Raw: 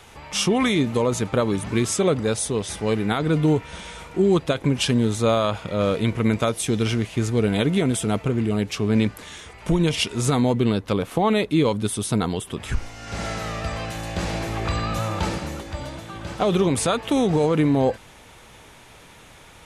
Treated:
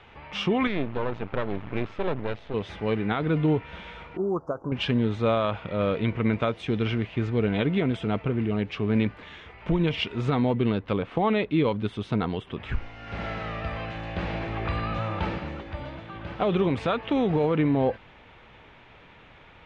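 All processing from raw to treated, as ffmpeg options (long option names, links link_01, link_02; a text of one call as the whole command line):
ffmpeg -i in.wav -filter_complex "[0:a]asettb=1/sr,asplit=3[link_01][link_02][link_03];[link_01]atrim=end=0.674[link_04];[link_02]atrim=start=0.67:end=2.54,asetpts=PTS-STARTPTS,afade=type=in:duration=0.004:curve=qsin,afade=type=out:start_time=1.866:duration=0.004:curve=qsin,lowpass=3400,aeval=exprs='max(val(0),0)':channel_layout=same[link_05];[link_03]atrim=start=2.536[link_06];[link_04][link_05]acrossfade=duration=0.004:curve1=hsin:curve2=qsin[link_07];[link_07][link_06]acrossfade=duration=0.004:curve1=qsin:curve2=hsin,asettb=1/sr,asplit=3[link_08][link_09][link_10];[link_08]atrim=end=4.174[link_11];[link_09]atrim=start=4.17:end=4.72,asetpts=PTS-STARTPTS,afade=type=in:duration=0.004:curve=qsin,afade=type=out:start_time=0.546:duration=0.004:curve=qsin,asuperstop=centerf=2800:order=12:qfactor=0.64,lowshelf=frequency=320:gain=-11[link_12];[link_10]atrim=start=4.716[link_13];[link_11][link_12]acrossfade=duration=0.004:curve1=hsin:curve2=qsin[link_14];[link_14][link_13]acrossfade=duration=0.004:curve1=qsin:curve2=hsin,lowpass=frequency=2900:width=0.5412,lowpass=frequency=2900:width=1.3066,aemphasis=mode=production:type=50fm,volume=-3.5dB" out.wav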